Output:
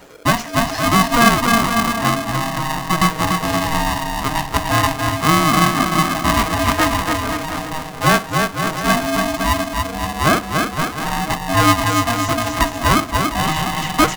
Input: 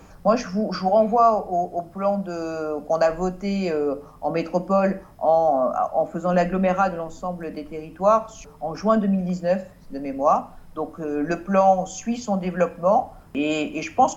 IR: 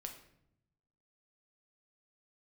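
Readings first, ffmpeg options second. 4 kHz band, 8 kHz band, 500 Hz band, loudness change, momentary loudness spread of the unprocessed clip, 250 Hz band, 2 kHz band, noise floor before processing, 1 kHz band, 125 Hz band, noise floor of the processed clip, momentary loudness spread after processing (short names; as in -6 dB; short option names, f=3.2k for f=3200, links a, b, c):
+19.0 dB, n/a, -2.5 dB, +5.5 dB, 12 LU, +5.5 dB, +16.0 dB, -46 dBFS, +5.5 dB, +10.0 dB, -30 dBFS, 7 LU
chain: -filter_complex "[0:a]acrossover=split=420[a][b];[a]acompressor=threshold=-23dB:ratio=6[c];[c][b]amix=inputs=2:normalize=0,aecho=1:1:290|522|707.6|856.1|974.9:0.631|0.398|0.251|0.158|0.1,aeval=exprs='val(0)*sgn(sin(2*PI*470*n/s))':c=same,volume=3dB"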